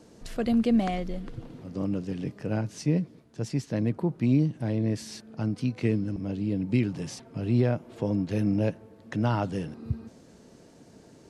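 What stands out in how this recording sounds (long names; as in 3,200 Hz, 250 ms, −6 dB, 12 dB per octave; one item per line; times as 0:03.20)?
background noise floor −54 dBFS
spectral slope −8.0 dB per octave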